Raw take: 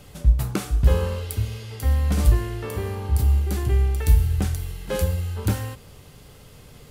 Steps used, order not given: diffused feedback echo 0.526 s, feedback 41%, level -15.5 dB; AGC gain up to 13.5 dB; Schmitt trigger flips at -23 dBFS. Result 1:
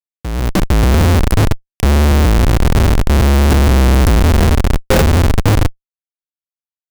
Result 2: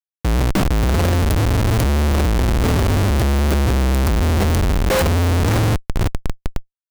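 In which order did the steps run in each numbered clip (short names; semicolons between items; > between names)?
diffused feedback echo > Schmitt trigger > AGC; AGC > diffused feedback echo > Schmitt trigger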